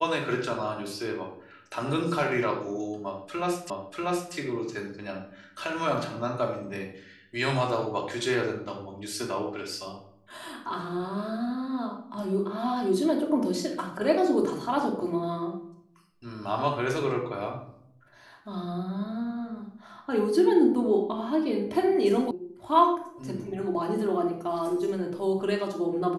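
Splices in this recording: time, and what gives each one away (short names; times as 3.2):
3.7 repeat of the last 0.64 s
22.31 sound cut off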